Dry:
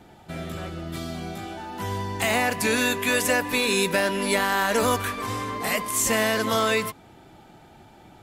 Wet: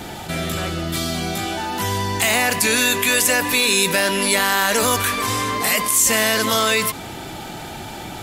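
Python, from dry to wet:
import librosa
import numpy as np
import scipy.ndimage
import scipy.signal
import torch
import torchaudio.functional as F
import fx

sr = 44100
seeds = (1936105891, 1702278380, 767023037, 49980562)

y = fx.high_shelf(x, sr, hz=2300.0, db=10.0)
y = fx.env_flatten(y, sr, amount_pct=50)
y = y * librosa.db_to_amplitude(-1.5)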